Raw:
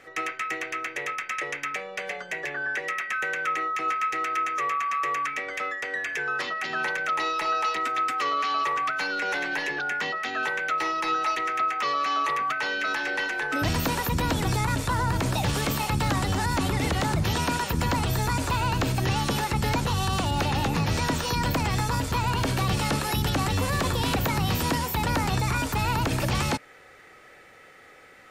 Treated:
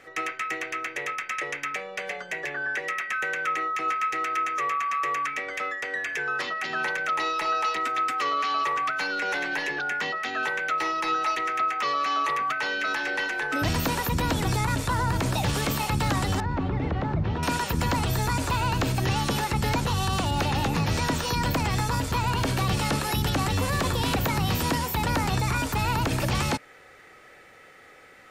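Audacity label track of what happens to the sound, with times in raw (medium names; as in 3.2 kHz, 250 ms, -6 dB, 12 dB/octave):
16.400000	17.430000	tape spacing loss at 10 kHz 43 dB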